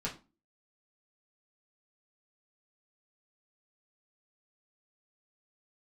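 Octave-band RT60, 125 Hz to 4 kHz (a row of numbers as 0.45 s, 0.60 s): 0.35 s, 0.45 s, 0.30 s, 0.30 s, 0.25 s, 0.25 s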